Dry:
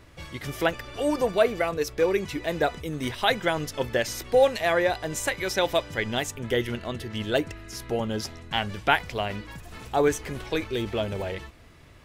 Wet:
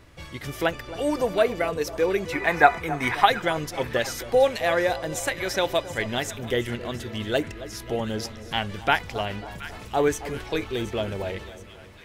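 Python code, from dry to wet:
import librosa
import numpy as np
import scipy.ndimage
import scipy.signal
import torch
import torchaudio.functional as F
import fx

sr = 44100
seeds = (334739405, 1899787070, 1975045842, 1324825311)

y = fx.spec_box(x, sr, start_s=2.33, length_s=0.93, low_hz=680.0, high_hz=2600.0, gain_db=12)
y = fx.echo_split(y, sr, split_hz=1200.0, low_ms=270, high_ms=723, feedback_pct=52, wet_db=-14.0)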